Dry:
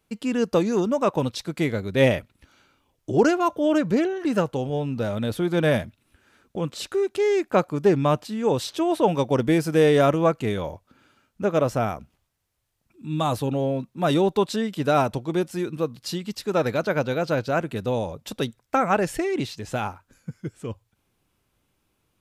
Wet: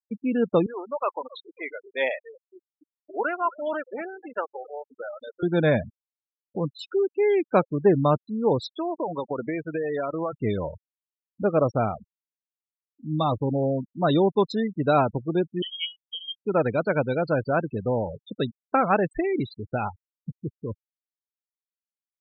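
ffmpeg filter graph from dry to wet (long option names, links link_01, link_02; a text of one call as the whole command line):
ffmpeg -i in.wav -filter_complex "[0:a]asettb=1/sr,asplit=3[link_01][link_02][link_03];[link_01]atrim=end=0.664[link_04];[link_02]atrim=start=0.66:end=5.43,asetpts=PTS-STARTPTS,afade=type=in:duration=0.004:curve=qsin,afade=type=out:start_time=4.766:duration=0.004:curve=qsin,highpass=770,lowpass=3700,asplit=8[link_05][link_06][link_07][link_08][link_09][link_10][link_11][link_12];[link_06]adelay=263,afreqshift=-83,volume=-17dB[link_13];[link_07]adelay=526,afreqshift=-166,volume=-20.7dB[link_14];[link_08]adelay=789,afreqshift=-249,volume=-24.5dB[link_15];[link_09]adelay=1052,afreqshift=-332,volume=-28.2dB[link_16];[link_10]adelay=1315,afreqshift=-415,volume=-32dB[link_17];[link_11]adelay=1578,afreqshift=-498,volume=-35.7dB[link_18];[link_12]adelay=1841,afreqshift=-581,volume=-39.5dB[link_19];[link_05][link_13][link_14][link_15][link_16][link_17][link_18][link_19]amix=inputs=8:normalize=0,atrim=end_sample=210357[link_20];[link_03]atrim=start=5.426[link_21];[link_04][link_20]acrossfade=duration=0.004:curve1=hsin:curve2=qsin[link_22];[link_22][link_21]acrossfade=duration=0.004:curve1=qsin:curve2=hsin,asettb=1/sr,asplit=3[link_23][link_24][link_25];[link_23]atrim=end=8.674[link_26];[link_24]atrim=start=8.67:end=10.33,asetpts=PTS-STARTPTS,afade=type=in:duration=0.004:curve=qsin,afade=type=out:start_time=1.656:duration=0.004:curve=qsin,lowpass=2600,aemphasis=mode=production:type=riaa,acompressor=threshold=-23dB:ratio=10:attack=3.2:release=140:knee=1:detection=peak[link_27];[link_25]atrim=start=10.326[link_28];[link_26][link_27]acrossfade=duration=0.004:curve1=hsin:curve2=qsin[link_29];[link_29][link_28]acrossfade=duration=0.004:curve1=qsin:curve2=hsin,asettb=1/sr,asplit=3[link_30][link_31][link_32];[link_30]atrim=end=15.624[link_33];[link_31]atrim=start=15.62:end=16.42,asetpts=PTS-STARTPTS,afade=type=in:duration=0.004:curve=qsin,afade=type=out:start_time=0.796:duration=0.004:curve=qsin,equalizer=frequency=290:width=3.2:gain=-11.5,bandreject=frequency=60:width_type=h:width=6,bandreject=frequency=120:width_type=h:width=6,bandreject=frequency=180:width_type=h:width=6,bandreject=frequency=240:width_type=h:width=6,bandreject=frequency=300:width_type=h:width=6,bandreject=frequency=360:width_type=h:width=6,bandreject=frequency=420:width_type=h:width=6,bandreject=frequency=480:width_type=h:width=6,bandreject=frequency=540:width_type=h:width=6,lowpass=frequency=2900:width_type=q:width=0.5098,lowpass=frequency=2900:width_type=q:width=0.6013,lowpass=frequency=2900:width_type=q:width=0.9,lowpass=frequency=2900:width_type=q:width=2.563,afreqshift=-3400[link_34];[link_32]atrim=start=16.416[link_35];[link_33][link_34]acrossfade=duration=0.004:curve1=hsin:curve2=qsin[link_36];[link_36][link_35]acrossfade=duration=0.004:curve1=qsin:curve2=hsin,afftfilt=real='re*gte(hypot(re,im),0.0562)':imag='im*gte(hypot(re,im),0.0562)':win_size=1024:overlap=0.75,bandreject=frequency=2800:width=7.9" out.wav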